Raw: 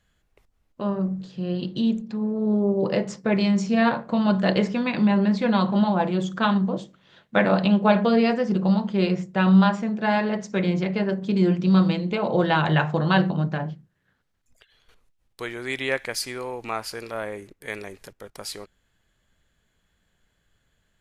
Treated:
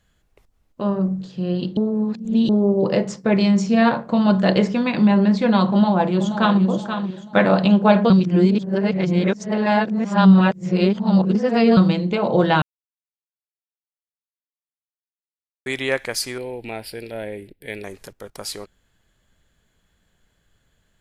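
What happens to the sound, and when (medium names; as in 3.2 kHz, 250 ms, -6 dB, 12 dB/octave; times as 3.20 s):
1.77–2.49 s: reverse
5.68–6.62 s: echo throw 480 ms, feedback 40%, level -8.5 dB
8.10–11.77 s: reverse
12.62–15.66 s: mute
16.38–17.84 s: static phaser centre 2.8 kHz, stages 4
whole clip: peaking EQ 2 kHz -2.5 dB 1.7 oct; trim +4.5 dB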